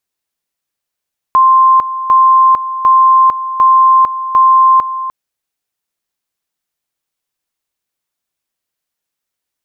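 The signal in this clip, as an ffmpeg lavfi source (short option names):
-f lavfi -i "aevalsrc='pow(10,(-4-12.5*gte(mod(t,0.75),0.45))/20)*sin(2*PI*1050*t)':d=3.75:s=44100"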